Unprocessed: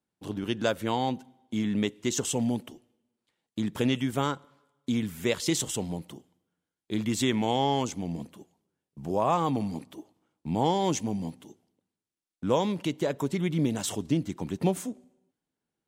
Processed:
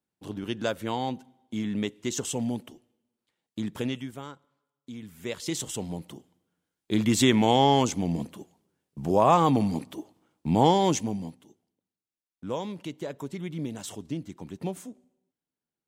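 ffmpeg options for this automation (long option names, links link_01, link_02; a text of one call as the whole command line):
ffmpeg -i in.wav -af "volume=16.5dB,afade=type=out:start_time=3.68:duration=0.53:silence=0.281838,afade=type=in:start_time=4.98:duration=0.93:silence=0.251189,afade=type=in:start_time=5.91:duration=1.22:silence=0.473151,afade=type=out:start_time=10.64:duration=0.77:silence=0.237137" out.wav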